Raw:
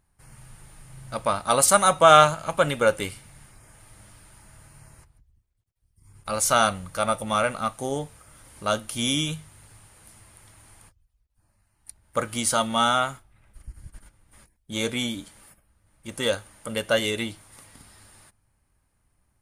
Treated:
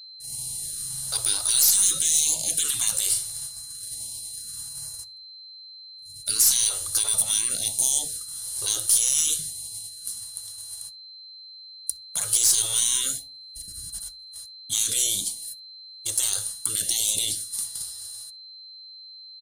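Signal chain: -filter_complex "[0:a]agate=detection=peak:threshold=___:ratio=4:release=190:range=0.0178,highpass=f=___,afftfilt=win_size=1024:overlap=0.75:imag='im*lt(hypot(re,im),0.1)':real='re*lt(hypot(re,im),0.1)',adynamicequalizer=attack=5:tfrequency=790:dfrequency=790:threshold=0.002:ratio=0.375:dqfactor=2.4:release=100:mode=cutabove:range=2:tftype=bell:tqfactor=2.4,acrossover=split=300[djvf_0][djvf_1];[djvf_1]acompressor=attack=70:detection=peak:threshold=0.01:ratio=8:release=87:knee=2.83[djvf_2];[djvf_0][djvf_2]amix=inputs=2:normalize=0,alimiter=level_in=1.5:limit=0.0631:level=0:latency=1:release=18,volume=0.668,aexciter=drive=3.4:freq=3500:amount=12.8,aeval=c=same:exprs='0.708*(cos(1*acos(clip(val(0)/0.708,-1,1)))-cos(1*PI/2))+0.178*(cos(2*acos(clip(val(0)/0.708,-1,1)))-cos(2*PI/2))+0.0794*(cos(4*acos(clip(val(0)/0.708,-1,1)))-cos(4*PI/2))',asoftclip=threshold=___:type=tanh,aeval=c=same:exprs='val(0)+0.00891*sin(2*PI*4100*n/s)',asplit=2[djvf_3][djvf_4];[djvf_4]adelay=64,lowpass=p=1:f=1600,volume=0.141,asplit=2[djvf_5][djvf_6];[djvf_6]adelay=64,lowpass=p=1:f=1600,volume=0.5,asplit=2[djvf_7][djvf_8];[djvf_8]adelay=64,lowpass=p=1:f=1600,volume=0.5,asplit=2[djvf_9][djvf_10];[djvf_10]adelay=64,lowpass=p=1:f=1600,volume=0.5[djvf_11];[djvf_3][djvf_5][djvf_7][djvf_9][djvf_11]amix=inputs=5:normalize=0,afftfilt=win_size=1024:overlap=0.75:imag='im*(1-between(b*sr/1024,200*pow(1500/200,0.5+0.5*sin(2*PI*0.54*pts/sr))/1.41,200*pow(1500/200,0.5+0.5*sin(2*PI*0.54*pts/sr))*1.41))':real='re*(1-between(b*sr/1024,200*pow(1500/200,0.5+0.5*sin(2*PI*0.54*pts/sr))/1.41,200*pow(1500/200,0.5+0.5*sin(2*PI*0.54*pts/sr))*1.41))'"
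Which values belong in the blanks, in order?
0.00447, 41, 0.299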